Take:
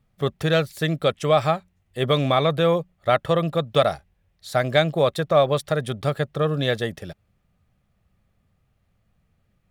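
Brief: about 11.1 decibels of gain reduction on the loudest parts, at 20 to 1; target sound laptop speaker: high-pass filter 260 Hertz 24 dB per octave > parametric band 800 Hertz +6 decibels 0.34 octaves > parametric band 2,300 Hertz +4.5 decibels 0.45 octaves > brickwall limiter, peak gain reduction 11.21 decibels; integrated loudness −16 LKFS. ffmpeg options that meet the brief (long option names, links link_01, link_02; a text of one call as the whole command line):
ffmpeg -i in.wav -af "acompressor=threshold=-23dB:ratio=20,highpass=frequency=260:width=0.5412,highpass=frequency=260:width=1.3066,equalizer=frequency=800:width_type=o:width=0.34:gain=6,equalizer=frequency=2300:width_type=o:width=0.45:gain=4.5,volume=19.5dB,alimiter=limit=-4dB:level=0:latency=1" out.wav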